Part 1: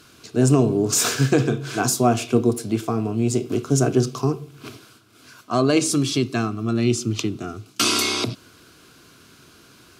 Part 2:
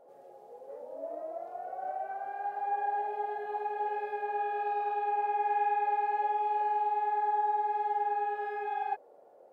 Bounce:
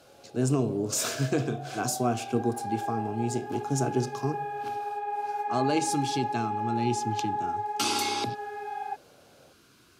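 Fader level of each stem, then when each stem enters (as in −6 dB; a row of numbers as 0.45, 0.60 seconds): −9.0, −1.5 decibels; 0.00, 0.00 seconds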